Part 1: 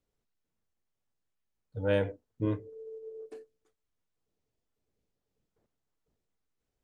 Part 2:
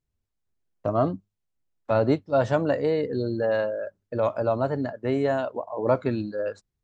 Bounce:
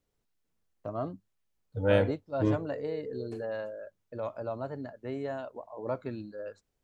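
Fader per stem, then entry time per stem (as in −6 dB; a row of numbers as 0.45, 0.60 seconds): +3.0, −11.5 decibels; 0.00, 0.00 seconds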